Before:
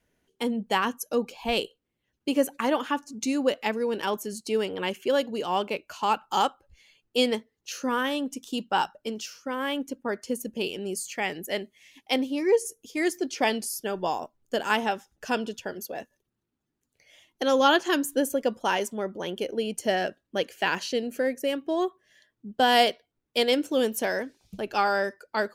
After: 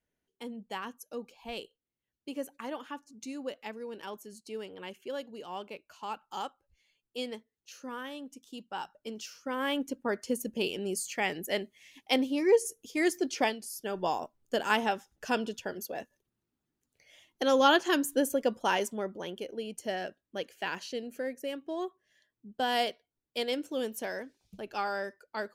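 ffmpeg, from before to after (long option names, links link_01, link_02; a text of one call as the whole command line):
ffmpeg -i in.wav -af "volume=9dB,afade=type=in:start_time=8.8:duration=0.92:silence=0.251189,afade=type=out:start_time=13.4:duration=0.16:silence=0.266073,afade=type=in:start_time=13.56:duration=0.5:silence=0.298538,afade=type=out:start_time=18.85:duration=0.6:silence=0.473151" out.wav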